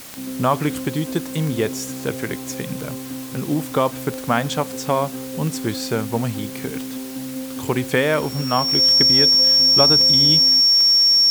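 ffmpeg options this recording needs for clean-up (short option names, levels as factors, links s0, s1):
-af "adeclick=t=4,bandreject=f=5500:w=30,afwtdn=0.013"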